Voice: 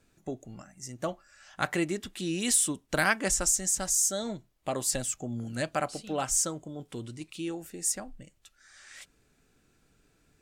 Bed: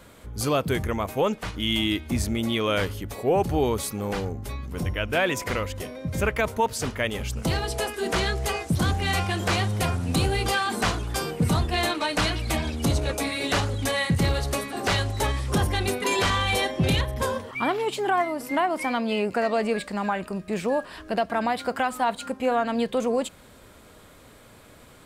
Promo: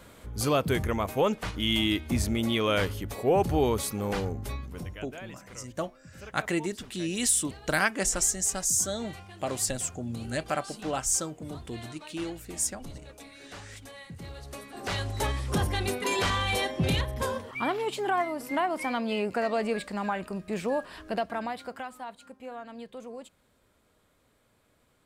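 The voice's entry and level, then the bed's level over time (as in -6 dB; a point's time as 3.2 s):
4.75 s, 0.0 dB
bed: 4.54 s -1.5 dB
5.22 s -21 dB
14.18 s -21 dB
15.16 s -4 dB
21.11 s -4 dB
22.16 s -17.5 dB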